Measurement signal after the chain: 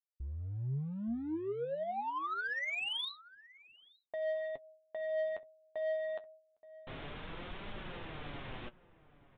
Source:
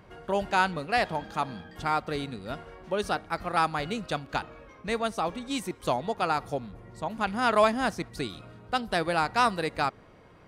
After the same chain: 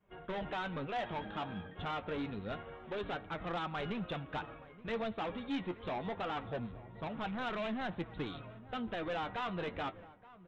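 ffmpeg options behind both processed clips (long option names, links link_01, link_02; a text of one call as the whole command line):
ffmpeg -i in.wav -filter_complex "[0:a]agate=range=-33dB:threshold=-43dB:ratio=3:detection=peak,alimiter=limit=-18dB:level=0:latency=1:release=170,aresample=8000,asoftclip=type=hard:threshold=-32dB,aresample=44100,flanger=delay=4.8:depth=6.7:regen=45:speed=0.26:shape=triangular,asoftclip=type=tanh:threshold=-31dB,asplit=2[link_01][link_02];[link_02]adelay=874.6,volume=-18dB,highshelf=frequency=4000:gain=-19.7[link_03];[link_01][link_03]amix=inputs=2:normalize=0,volume=2dB" out.wav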